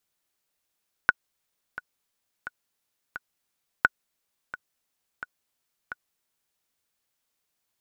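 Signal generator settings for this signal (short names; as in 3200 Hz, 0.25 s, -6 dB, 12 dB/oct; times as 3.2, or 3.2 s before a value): metronome 87 bpm, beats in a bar 4, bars 2, 1470 Hz, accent 17 dB -4 dBFS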